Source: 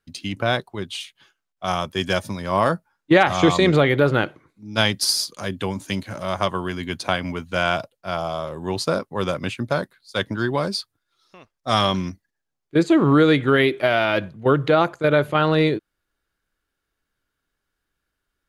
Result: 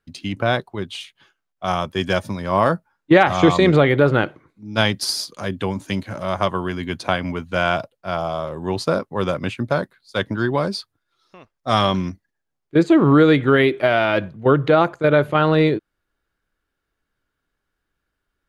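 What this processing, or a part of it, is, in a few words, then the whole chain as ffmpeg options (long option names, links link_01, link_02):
behind a face mask: -af "highshelf=frequency=3400:gain=-7.5,volume=2.5dB"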